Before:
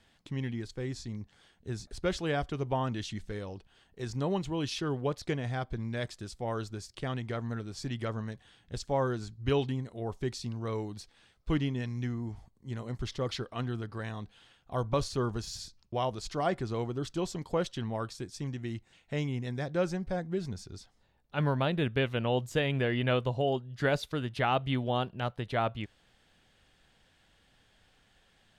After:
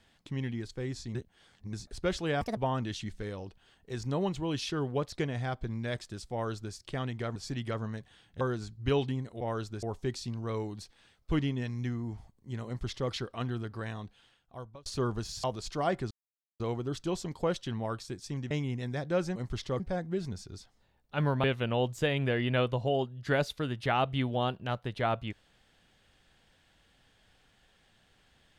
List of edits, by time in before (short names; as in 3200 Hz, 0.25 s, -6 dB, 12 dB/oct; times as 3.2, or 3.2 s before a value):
1.15–1.73 reverse
2.41–2.66 speed 159%
6.41–6.83 copy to 10.01
7.45–7.7 cut
8.75–9.01 cut
12.85–13.29 copy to 20
14.06–15.04 fade out
15.62–16.03 cut
16.7 insert silence 0.49 s
18.61–19.15 cut
21.64–21.97 cut